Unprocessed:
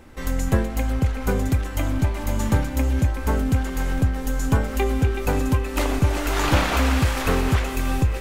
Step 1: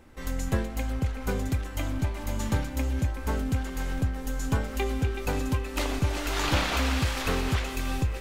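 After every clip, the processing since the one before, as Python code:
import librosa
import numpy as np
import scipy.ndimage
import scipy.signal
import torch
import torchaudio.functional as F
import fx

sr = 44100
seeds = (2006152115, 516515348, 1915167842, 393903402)

y = fx.dynamic_eq(x, sr, hz=4100.0, q=0.77, threshold_db=-41.0, ratio=4.0, max_db=6)
y = y * librosa.db_to_amplitude(-7.0)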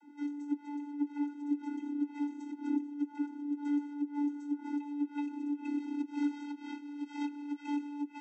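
y = x + 0.42 * np.pad(x, (int(3.9 * sr / 1000.0), 0))[:len(x)]
y = fx.over_compress(y, sr, threshold_db=-31.0, ratio=-0.5)
y = fx.vocoder(y, sr, bands=32, carrier='square', carrier_hz=290.0)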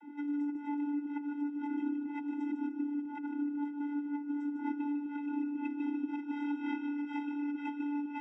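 y = fx.over_compress(x, sr, threshold_db=-39.0, ratio=-1.0)
y = scipy.signal.savgol_filter(y, 25, 4, mode='constant')
y = fx.echo_feedback(y, sr, ms=151, feedback_pct=38, wet_db=-8.0)
y = y * librosa.db_to_amplitude(3.5)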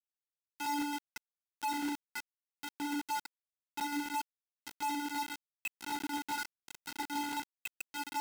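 y = fx.room_early_taps(x, sr, ms=(14, 61), db=(-3.0, -16.5))
y = fx.filter_lfo_highpass(y, sr, shape='sine', hz=0.94, low_hz=520.0, high_hz=3000.0, q=4.2)
y = fx.quant_companded(y, sr, bits=2)
y = y * librosa.db_to_amplitude(-7.0)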